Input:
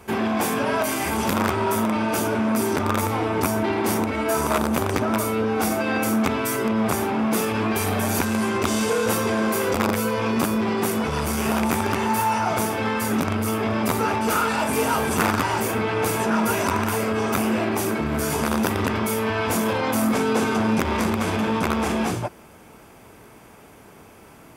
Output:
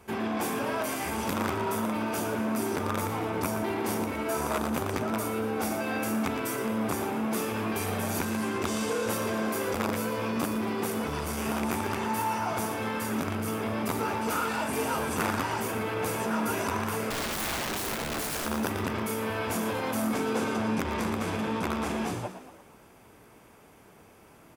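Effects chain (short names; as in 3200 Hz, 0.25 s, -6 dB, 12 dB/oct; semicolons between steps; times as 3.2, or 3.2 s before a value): 17.1–18.46 wrapped overs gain 19 dB; frequency-shifting echo 0.116 s, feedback 50%, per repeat +70 Hz, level -10.5 dB; gain -8 dB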